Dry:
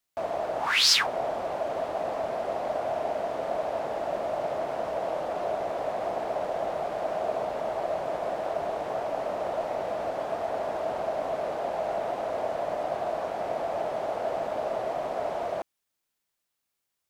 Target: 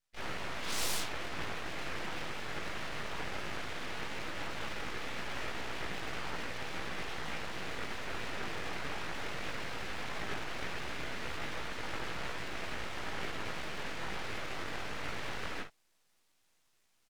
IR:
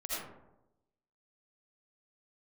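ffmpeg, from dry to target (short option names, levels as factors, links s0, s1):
-filter_complex "[0:a]bandreject=f=410:w=12,afftfilt=real='re*lt(hypot(re,im),0.0891)':imag='im*lt(hypot(re,im),0.0891)':win_size=1024:overlap=0.75,aecho=1:1:6.2:0.36,areverse,acompressor=mode=upward:threshold=0.00158:ratio=2.5,areverse,highpass=300,lowpass=5100,asplit=2[s0][s1];[s1]asetrate=66075,aresample=44100,atempo=0.66742,volume=0.562[s2];[s0][s2]amix=inputs=2:normalize=0,flanger=delay=15.5:depth=5.1:speed=0.17,asplit=2[s3][s4];[s4]aecho=0:1:18|52:0.376|0.335[s5];[s3][s5]amix=inputs=2:normalize=0,aeval=exprs='abs(val(0))':c=same,volume=1.5"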